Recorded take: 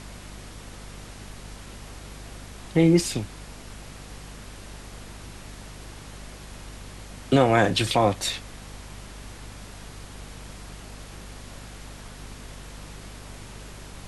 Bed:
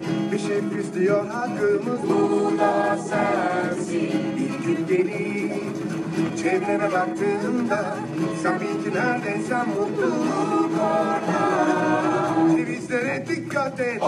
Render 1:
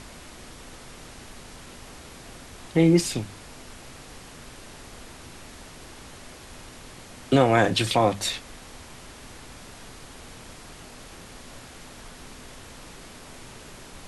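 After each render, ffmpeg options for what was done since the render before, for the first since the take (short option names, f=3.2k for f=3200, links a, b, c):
-af "bandreject=f=50:t=h:w=6,bandreject=f=100:t=h:w=6,bandreject=f=150:t=h:w=6,bandreject=f=200:t=h:w=6"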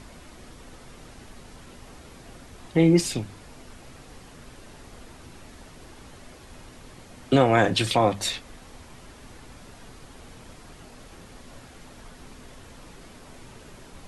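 -af "afftdn=nr=6:nf=-45"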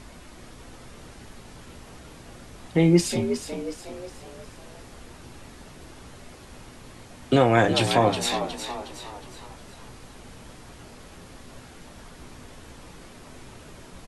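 -filter_complex "[0:a]asplit=2[a][b];[b]adelay=17,volume=-12dB[c];[a][c]amix=inputs=2:normalize=0,asplit=6[d][e][f][g][h][i];[e]adelay=364,afreqshift=65,volume=-9dB[j];[f]adelay=728,afreqshift=130,volume=-15.7dB[k];[g]adelay=1092,afreqshift=195,volume=-22.5dB[l];[h]adelay=1456,afreqshift=260,volume=-29.2dB[m];[i]adelay=1820,afreqshift=325,volume=-36dB[n];[d][j][k][l][m][n]amix=inputs=6:normalize=0"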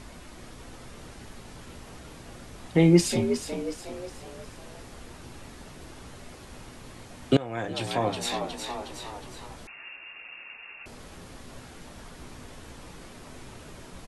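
-filter_complex "[0:a]asettb=1/sr,asplit=3[a][b][c];[a]atrim=end=9.674[d];[b]atrim=start=9.67:end=10.86,asetpts=PTS-STARTPTS,afade=t=in:d=0.004:c=qsin,afade=t=out:st=1.186:d=0.004:c=qsin,lowpass=f=2.4k:t=q:w=0.5098,lowpass=f=2.4k:t=q:w=0.6013,lowpass=f=2.4k:t=q:w=0.9,lowpass=f=2.4k:t=q:w=2.563,afreqshift=-2800[e];[c]atrim=start=10.856[f];[d][e]acrossfade=d=0.004:c1=hsin:c2=qsin[g];[g][f]acrossfade=d=0.004:c1=qsin:c2=hsin,asplit=2[h][i];[h]atrim=end=7.37,asetpts=PTS-STARTPTS,afade=t=out:st=7.366:d=0.004:c=hsin:silence=0.0841395[j];[i]atrim=start=7.37,asetpts=PTS-STARTPTS,afade=t=in:d=1.62:silence=0.0841395[k];[j][k]concat=n=2:v=0:a=1"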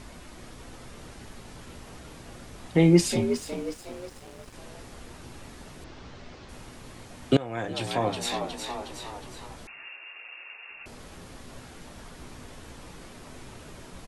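-filter_complex "[0:a]asettb=1/sr,asplit=3[a][b][c];[a]atrim=end=3.304[d];[b]atrim=start=3.3:end=4.54,asetpts=PTS-STARTPTS,afade=t=in:d=0.004:c=qsin,afade=t=out:st=1.236:d=0.004:c=qsin,aeval=exprs='sgn(val(0))*max(abs(val(0))-0.00355,0)':c=same[e];[c]atrim=start=4.536[f];[d][e]acrossfade=d=0.004:c1=hsin:c2=qsin[g];[g][f]acrossfade=d=0.004:c1=qsin:c2=hsin,asettb=1/sr,asplit=3[h][i][j];[h]atrim=end=5.844[k];[i]atrim=start=5.84:end=6.49,asetpts=PTS-STARTPTS,afade=t=in:d=0.004:c=qsin,afade=t=out:st=0.646:d=0.004:c=qsin,lowpass=f=5.8k:w=0.5412,lowpass=f=5.8k:w=1.3066[l];[j]atrim=start=6.486[m];[k][l]acrossfade=d=0.004:c1=hsin:c2=qsin[n];[n][m]acrossfade=d=0.004:c1=qsin:c2=hsin,asettb=1/sr,asplit=3[o][p][q];[o]atrim=end=9.864[r];[p]atrim=start=9.86:end=10.7,asetpts=PTS-STARTPTS,afade=t=in:d=0.004:c=qsin,afade=t=out:st=0.836:d=0.004:c=qsin,highpass=f=340:w=0.5412,highpass=f=340:w=1.3066[s];[q]atrim=start=10.696[t];[r][s]acrossfade=d=0.004:c1=hsin:c2=qsin[u];[u][t]acrossfade=d=0.004:c1=qsin:c2=hsin"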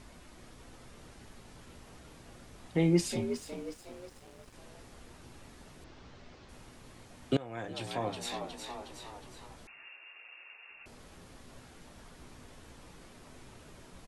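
-af "volume=-8dB"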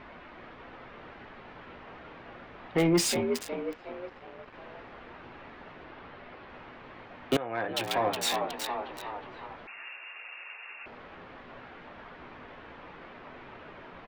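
-filter_complex "[0:a]acrossover=split=2800[a][b];[b]acrusher=bits=6:mix=0:aa=0.000001[c];[a][c]amix=inputs=2:normalize=0,asplit=2[d][e];[e]highpass=f=720:p=1,volume=18dB,asoftclip=type=tanh:threshold=-14.5dB[f];[d][f]amix=inputs=2:normalize=0,lowpass=f=7.8k:p=1,volume=-6dB"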